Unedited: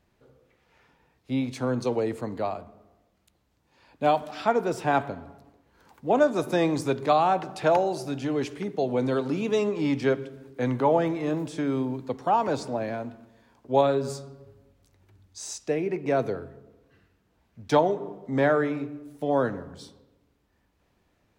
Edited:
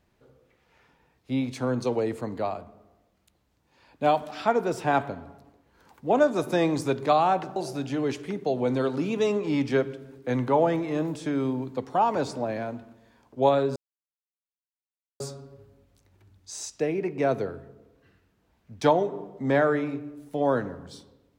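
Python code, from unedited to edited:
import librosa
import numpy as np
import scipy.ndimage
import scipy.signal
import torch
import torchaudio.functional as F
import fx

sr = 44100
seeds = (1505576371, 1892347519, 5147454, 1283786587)

y = fx.edit(x, sr, fx.cut(start_s=7.56, length_s=0.32),
    fx.insert_silence(at_s=14.08, length_s=1.44), tone=tone)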